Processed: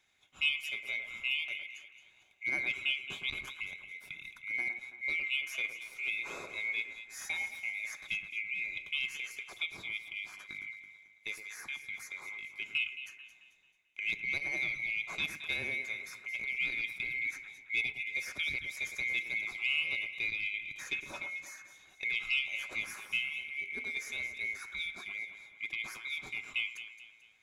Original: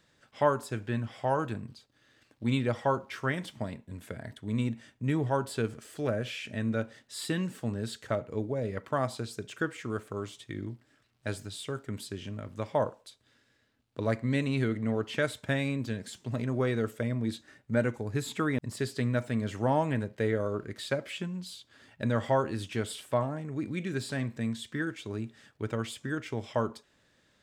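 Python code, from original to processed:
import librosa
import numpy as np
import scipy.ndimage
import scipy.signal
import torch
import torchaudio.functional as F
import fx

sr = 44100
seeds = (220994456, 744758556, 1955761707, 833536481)

p1 = fx.band_swap(x, sr, width_hz=2000)
p2 = p1 + fx.echo_alternate(p1, sr, ms=110, hz=2100.0, feedback_pct=62, wet_db=-7.0, dry=0)
p3 = fx.transformer_sat(p2, sr, knee_hz=1000.0)
y = p3 * 10.0 ** (-6.0 / 20.0)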